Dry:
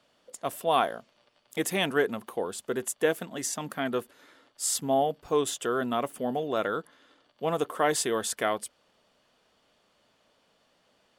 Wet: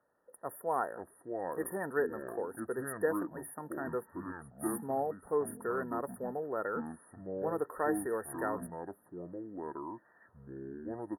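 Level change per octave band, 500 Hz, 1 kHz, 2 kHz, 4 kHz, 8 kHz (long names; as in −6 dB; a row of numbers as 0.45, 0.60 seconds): −6.0 dB, −7.0 dB, −8.0 dB, below −40 dB, −15.0 dB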